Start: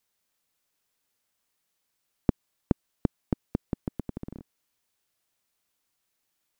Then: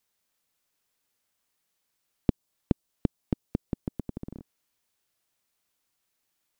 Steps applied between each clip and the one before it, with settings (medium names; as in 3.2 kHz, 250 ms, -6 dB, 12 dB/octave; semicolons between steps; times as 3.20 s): dynamic bell 1.8 kHz, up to -7 dB, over -56 dBFS, Q 0.77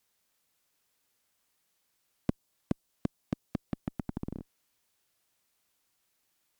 one-sided clip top -25 dBFS; trim +2.5 dB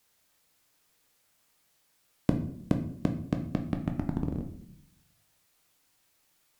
simulated room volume 120 m³, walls mixed, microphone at 0.51 m; trim +5 dB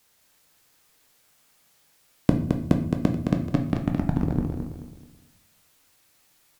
feedback delay 216 ms, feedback 34%, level -5 dB; trim +6 dB